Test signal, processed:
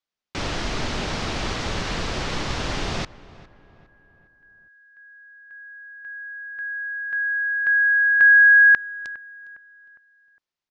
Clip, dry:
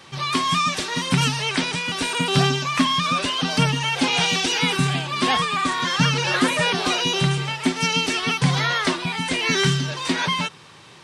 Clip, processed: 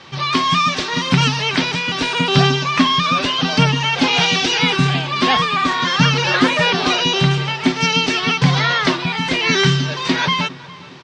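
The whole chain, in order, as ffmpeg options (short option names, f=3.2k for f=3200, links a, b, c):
-filter_complex "[0:a]lowpass=f=5.8k:w=0.5412,lowpass=f=5.8k:w=1.3066,asplit=2[a][b];[b]adelay=408,lowpass=f=2.1k:p=1,volume=-19dB,asplit=2[c][d];[d]adelay=408,lowpass=f=2.1k:p=1,volume=0.47,asplit=2[e][f];[f]adelay=408,lowpass=f=2.1k:p=1,volume=0.47,asplit=2[g][h];[h]adelay=408,lowpass=f=2.1k:p=1,volume=0.47[i];[c][e][g][i]amix=inputs=4:normalize=0[j];[a][j]amix=inputs=2:normalize=0,volume=5dB"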